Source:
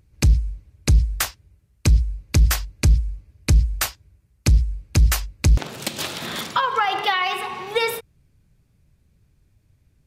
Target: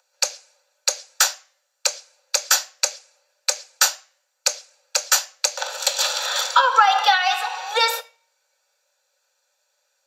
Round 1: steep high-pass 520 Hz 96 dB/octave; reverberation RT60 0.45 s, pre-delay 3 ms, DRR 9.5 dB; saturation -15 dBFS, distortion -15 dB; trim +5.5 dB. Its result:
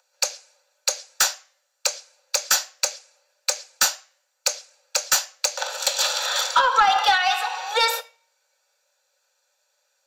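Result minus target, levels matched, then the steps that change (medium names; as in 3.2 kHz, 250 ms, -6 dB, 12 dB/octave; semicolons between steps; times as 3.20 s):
saturation: distortion +19 dB
change: saturation -3 dBFS, distortion -33 dB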